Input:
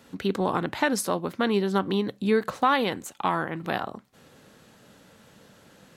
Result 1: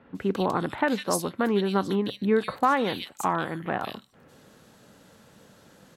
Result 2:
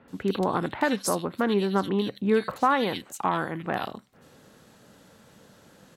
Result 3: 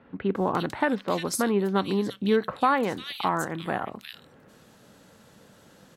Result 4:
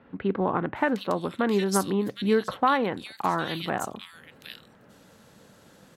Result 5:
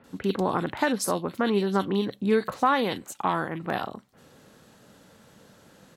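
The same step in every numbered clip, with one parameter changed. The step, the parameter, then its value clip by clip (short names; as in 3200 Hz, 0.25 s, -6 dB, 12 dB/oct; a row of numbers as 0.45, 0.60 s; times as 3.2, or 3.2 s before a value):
bands offset in time, time: 150, 80, 350, 760, 40 ms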